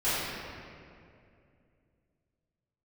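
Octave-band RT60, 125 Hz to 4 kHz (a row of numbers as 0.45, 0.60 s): 3.3, 3.1, 2.7, 2.2, 2.1, 1.5 s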